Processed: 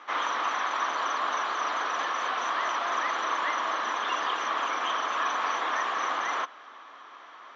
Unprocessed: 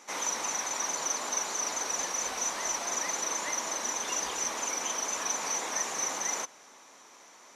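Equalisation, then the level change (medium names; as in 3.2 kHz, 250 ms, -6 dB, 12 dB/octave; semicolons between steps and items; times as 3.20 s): cabinet simulation 260–3900 Hz, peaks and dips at 310 Hz +4 dB, 700 Hz +5 dB, 1.1 kHz +9 dB, 1.7 kHz +8 dB, 3.2 kHz +8 dB; peaking EQ 1.3 kHz +8.5 dB 0.34 oct; 0.0 dB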